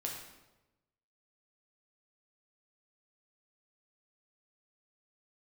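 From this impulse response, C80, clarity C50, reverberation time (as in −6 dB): 6.0 dB, 3.5 dB, 1.0 s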